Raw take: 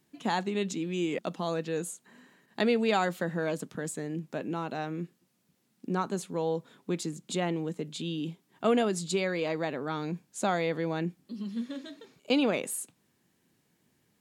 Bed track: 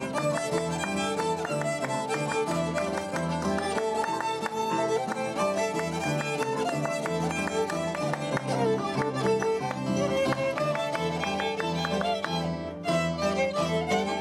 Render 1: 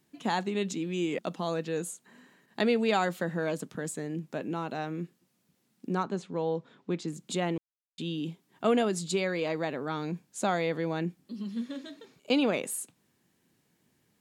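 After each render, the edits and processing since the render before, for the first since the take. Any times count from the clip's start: 6.03–7.08 s: distance through air 120 m; 7.58–7.98 s: mute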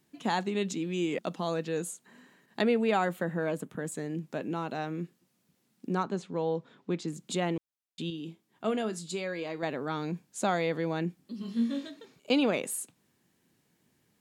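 2.62–3.92 s: peaking EQ 5.1 kHz -10.5 dB 1.1 oct; 8.10–9.63 s: feedback comb 110 Hz, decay 0.24 s; 11.39–11.88 s: flutter echo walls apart 3.7 m, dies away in 0.38 s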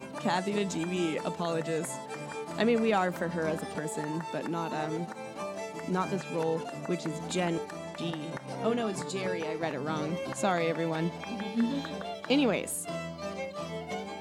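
add bed track -10.5 dB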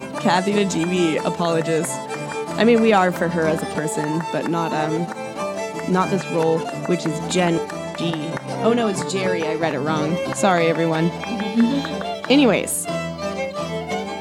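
trim +11.5 dB; peak limiter -3 dBFS, peak gain reduction 1 dB

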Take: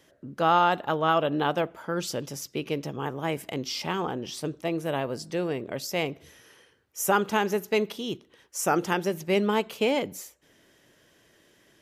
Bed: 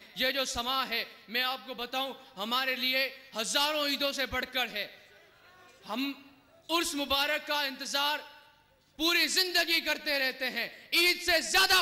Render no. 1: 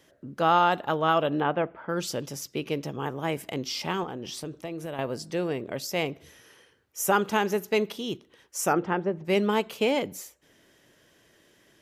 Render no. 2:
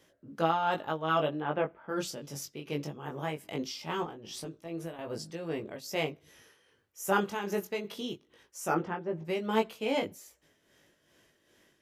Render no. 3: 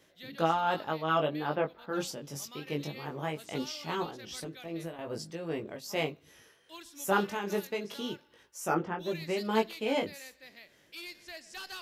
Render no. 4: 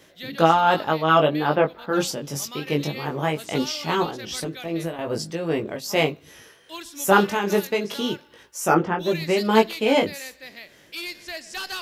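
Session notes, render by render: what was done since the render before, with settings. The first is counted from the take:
1.40–1.89 s: low-pass 2.6 kHz 24 dB/octave; 4.03–4.99 s: compression, threshold -31 dBFS; 8.72–9.24 s: low-pass 2.3 kHz -> 1.1 kHz
chorus 0.21 Hz, delay 18 ms, depth 2.6 ms; tremolo 2.5 Hz, depth 61%
add bed -19.5 dB
trim +11 dB

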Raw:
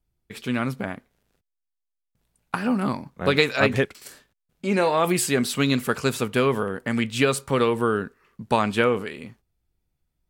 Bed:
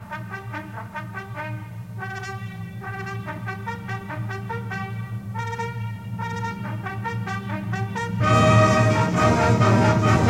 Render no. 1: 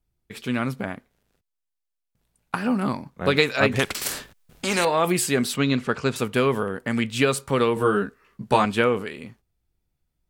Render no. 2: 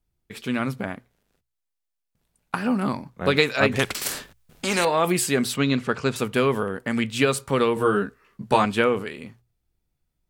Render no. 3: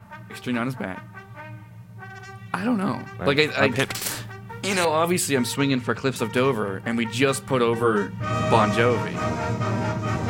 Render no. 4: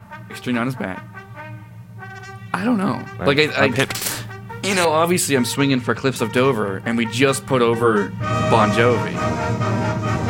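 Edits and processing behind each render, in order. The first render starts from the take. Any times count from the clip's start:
3.79–4.85 s: spectrum-flattening compressor 2:1; 5.56–6.16 s: distance through air 100 m; 7.75–8.65 s: doubling 15 ms -2 dB
hum notches 60/120 Hz
add bed -8 dB
trim +4.5 dB; peak limiter -2 dBFS, peak gain reduction 2.5 dB

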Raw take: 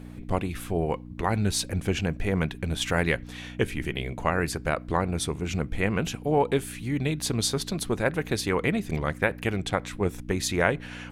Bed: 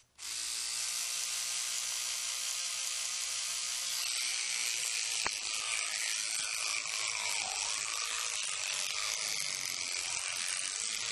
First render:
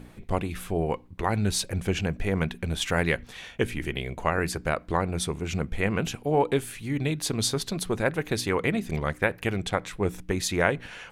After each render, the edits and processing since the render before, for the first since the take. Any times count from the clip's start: de-hum 60 Hz, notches 5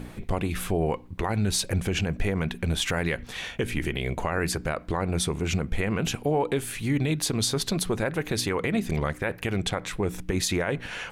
in parallel at +2 dB: compression, threshold -32 dBFS, peak gain reduction 14.5 dB; on the sum: peak limiter -15.5 dBFS, peak gain reduction 12 dB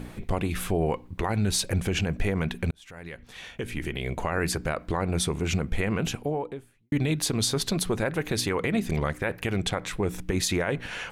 2.71–4.40 s: fade in; 5.89–6.92 s: studio fade out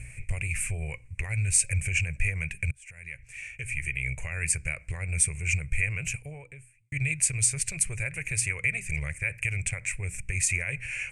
FFT filter 130 Hz 0 dB, 230 Hz -29 dB, 570 Hz -15 dB, 830 Hz -22 dB, 1.3 kHz -18 dB, 2.4 kHz +11 dB, 3.5 kHz -22 dB, 8.7 kHz +12 dB, 14 kHz -20 dB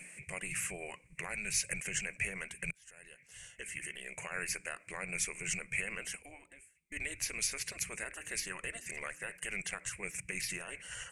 spectral gate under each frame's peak -15 dB weak; dynamic bell 1.2 kHz, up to +5 dB, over -58 dBFS, Q 1.7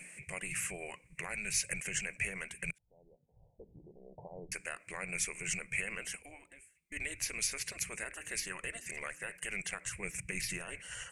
2.78–4.52 s: steep low-pass 910 Hz 96 dB/octave; 9.90–10.80 s: bass shelf 190 Hz +7 dB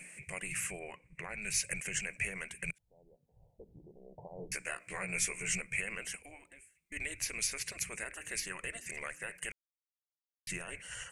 0.79–1.42 s: low-pass 2.1 kHz 6 dB/octave; 4.37–5.62 s: doubling 16 ms -2 dB; 9.52–10.47 s: mute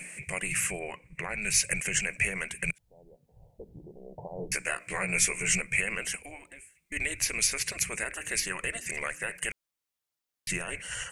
trim +8 dB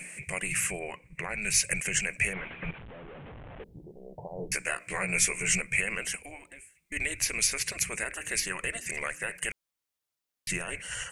2.33–3.64 s: one-bit delta coder 16 kbps, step -39 dBFS

